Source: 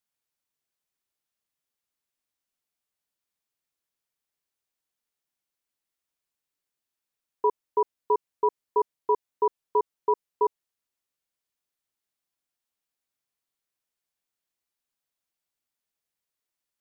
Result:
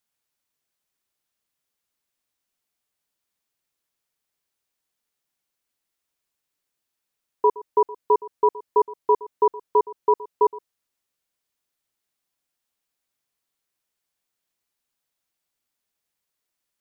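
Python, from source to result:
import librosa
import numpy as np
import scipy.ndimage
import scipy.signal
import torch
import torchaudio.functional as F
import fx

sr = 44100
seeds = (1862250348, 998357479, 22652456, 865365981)

y = x + 10.0 ** (-19.0 / 20.0) * np.pad(x, (int(118 * sr / 1000.0), 0))[:len(x)]
y = y * librosa.db_to_amplitude(5.0)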